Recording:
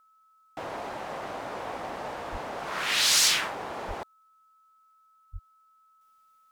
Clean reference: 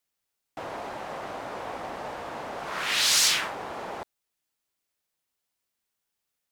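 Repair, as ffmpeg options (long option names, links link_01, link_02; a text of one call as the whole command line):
ffmpeg -i in.wav -filter_complex "[0:a]bandreject=frequency=1300:width=30,asplit=3[link_01][link_02][link_03];[link_01]afade=type=out:start_time=2.31:duration=0.02[link_04];[link_02]highpass=frequency=140:width=0.5412,highpass=frequency=140:width=1.3066,afade=type=in:start_time=2.31:duration=0.02,afade=type=out:start_time=2.43:duration=0.02[link_05];[link_03]afade=type=in:start_time=2.43:duration=0.02[link_06];[link_04][link_05][link_06]amix=inputs=3:normalize=0,asplit=3[link_07][link_08][link_09];[link_07]afade=type=out:start_time=3.87:duration=0.02[link_10];[link_08]highpass=frequency=140:width=0.5412,highpass=frequency=140:width=1.3066,afade=type=in:start_time=3.87:duration=0.02,afade=type=out:start_time=3.99:duration=0.02[link_11];[link_09]afade=type=in:start_time=3.99:duration=0.02[link_12];[link_10][link_11][link_12]amix=inputs=3:normalize=0,asplit=3[link_13][link_14][link_15];[link_13]afade=type=out:start_time=5.32:duration=0.02[link_16];[link_14]highpass=frequency=140:width=0.5412,highpass=frequency=140:width=1.3066,afade=type=in:start_time=5.32:duration=0.02,afade=type=out:start_time=5.44:duration=0.02[link_17];[link_15]afade=type=in:start_time=5.44:duration=0.02[link_18];[link_16][link_17][link_18]amix=inputs=3:normalize=0,asetnsamples=nb_out_samples=441:pad=0,asendcmd='6.01 volume volume -5.5dB',volume=0dB" out.wav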